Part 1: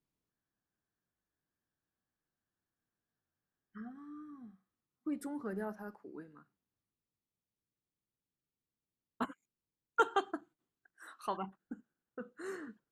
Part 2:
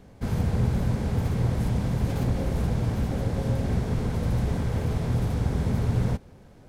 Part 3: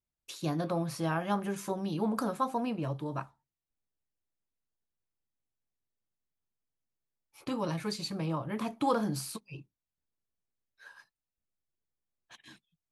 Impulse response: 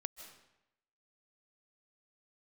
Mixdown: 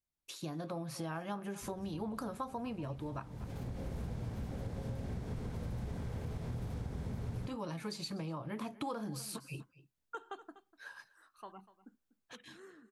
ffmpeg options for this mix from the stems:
-filter_complex "[0:a]adelay=150,volume=0.237,asplit=2[s0][s1];[s1]volume=0.141[s2];[1:a]adelay=1400,volume=0.668[s3];[2:a]dynaudnorm=f=120:g=11:m=2,volume=0.668,asplit=3[s4][s5][s6];[s5]volume=0.0891[s7];[s6]apad=whole_len=356745[s8];[s3][s8]sidechaincompress=threshold=0.00398:ratio=4:attack=16:release=576[s9];[s2][s7]amix=inputs=2:normalize=0,aecho=0:1:245:1[s10];[s0][s9][s4][s10]amix=inputs=4:normalize=0,acompressor=threshold=0.0112:ratio=4"

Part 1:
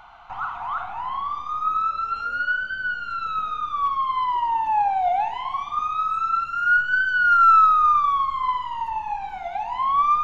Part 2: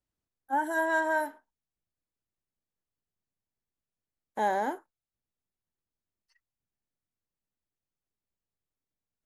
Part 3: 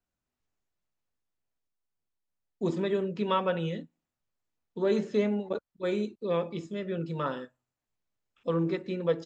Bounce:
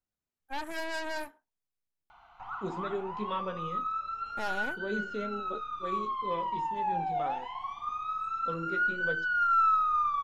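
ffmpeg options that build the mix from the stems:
-filter_complex "[0:a]adelay=2100,volume=0.299[s0];[1:a]aeval=exprs='0.168*(cos(1*acos(clip(val(0)/0.168,-1,1)))-cos(1*PI/2))+0.0376*(cos(8*acos(clip(val(0)/0.168,-1,1)))-cos(8*PI/2))':c=same,volume=0.316[s1];[2:a]flanger=delay=9.1:depth=7.7:regen=43:speed=0.41:shape=triangular,volume=0.631[s2];[s0][s1][s2]amix=inputs=3:normalize=0"

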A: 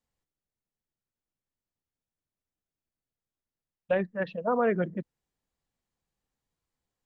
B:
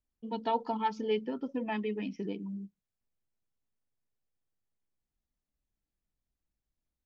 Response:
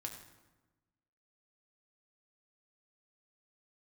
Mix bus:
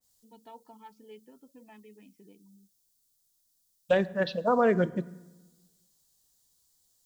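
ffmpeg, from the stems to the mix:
-filter_complex "[0:a]aexciter=amount=8.4:drive=5:freq=3600,volume=1.06,asplit=2[s0][s1];[s1]volume=0.447[s2];[1:a]volume=0.112[s3];[2:a]atrim=start_sample=2205[s4];[s2][s4]afir=irnorm=-1:irlink=0[s5];[s0][s3][s5]amix=inputs=3:normalize=0,adynamicequalizer=threshold=0.00794:dfrequency=1900:dqfactor=0.7:tfrequency=1900:tqfactor=0.7:attack=5:release=100:ratio=0.375:range=1.5:mode=cutabove:tftype=highshelf"

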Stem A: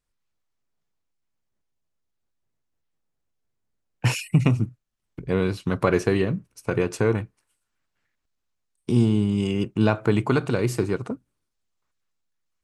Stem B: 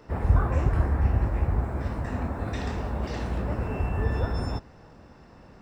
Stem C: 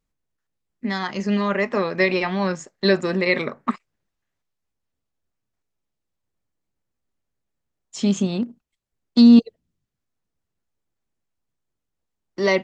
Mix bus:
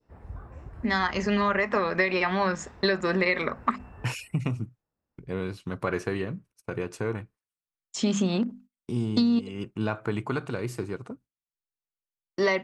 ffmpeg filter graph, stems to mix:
-filter_complex "[0:a]agate=range=0.141:threshold=0.00708:ratio=16:detection=peak,volume=0.355,asplit=2[s0][s1];[1:a]volume=0.1[s2];[2:a]bandreject=f=50:t=h:w=6,bandreject=f=100:t=h:w=6,bandreject=f=150:t=h:w=6,bandreject=f=200:t=h:w=6,bandreject=f=250:t=h:w=6,agate=range=0.0562:threshold=0.00398:ratio=16:detection=peak,volume=1[s3];[s1]apad=whole_len=247489[s4];[s2][s4]sidechaincompress=threshold=0.00398:ratio=4:attack=12:release=1300[s5];[s0][s5][s3]amix=inputs=3:normalize=0,adynamicequalizer=threshold=0.0141:dfrequency=1400:dqfactor=0.8:tfrequency=1400:tqfactor=0.8:attack=5:release=100:ratio=0.375:range=3.5:mode=boostabove:tftype=bell,acompressor=threshold=0.1:ratio=12"

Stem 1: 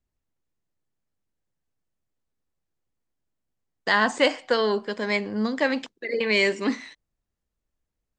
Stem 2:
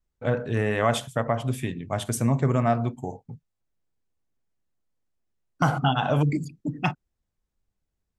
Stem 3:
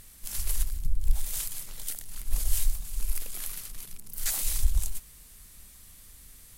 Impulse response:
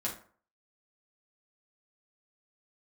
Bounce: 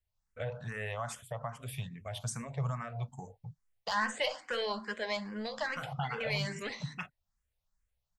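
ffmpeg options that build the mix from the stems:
-filter_complex "[0:a]asoftclip=type=tanh:threshold=0.168,volume=0.841,asplit=2[s0][s1];[s1]volume=0.188[s2];[1:a]adelay=150,volume=0.841[s3];[s0][s3]amix=inputs=2:normalize=0,equalizer=f=320:w=2.2:g=-14.5,alimiter=limit=0.0794:level=0:latency=1:release=306,volume=1[s4];[3:a]atrim=start_sample=2205[s5];[s2][s5]afir=irnorm=-1:irlink=0[s6];[s4][s6]amix=inputs=2:normalize=0,equalizer=f=280:w=1.4:g=-10.5,asplit=2[s7][s8];[s8]afreqshift=2.4[s9];[s7][s9]amix=inputs=2:normalize=1"

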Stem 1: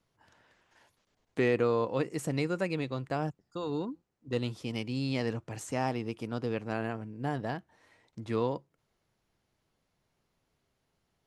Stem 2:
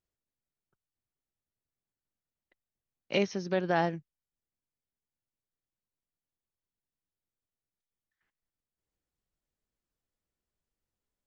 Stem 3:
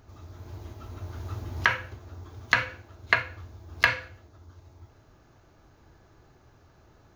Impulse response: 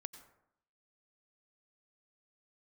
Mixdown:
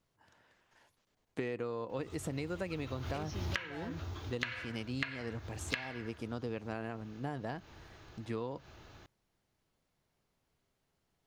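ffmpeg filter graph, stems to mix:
-filter_complex "[0:a]volume=0.708,asplit=2[s0][s1];[1:a]asoftclip=type=hard:threshold=0.0422,alimiter=level_in=4.73:limit=0.0631:level=0:latency=1,volume=0.211,volume=1.06[s2];[2:a]equalizer=f=3100:t=o:w=1.5:g=10.5,adelay=1900,volume=0.794,asplit=2[s3][s4];[s4]volume=0.668[s5];[s1]apad=whole_len=399521[s6];[s3][s6]sidechaincompress=threshold=0.00631:ratio=8:attack=8.2:release=130[s7];[3:a]atrim=start_sample=2205[s8];[s5][s8]afir=irnorm=-1:irlink=0[s9];[s0][s2][s7][s9]amix=inputs=4:normalize=0,acompressor=threshold=0.0224:ratio=16"

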